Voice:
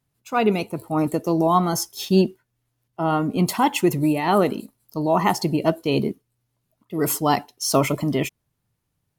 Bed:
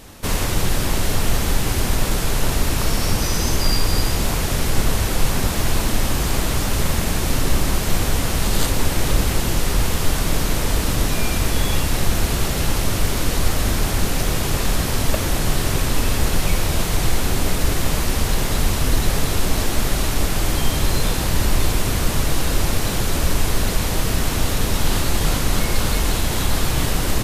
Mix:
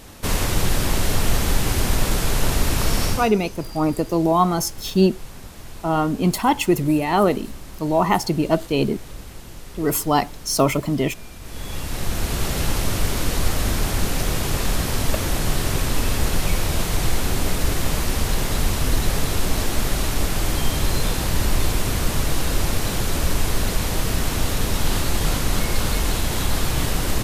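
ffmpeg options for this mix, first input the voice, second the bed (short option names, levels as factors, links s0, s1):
-filter_complex "[0:a]adelay=2850,volume=1.12[s0];[1:a]volume=6.68,afade=t=out:st=3.04:d=0.27:silence=0.11885,afade=t=in:st=11.41:d=1.13:silence=0.141254[s1];[s0][s1]amix=inputs=2:normalize=0"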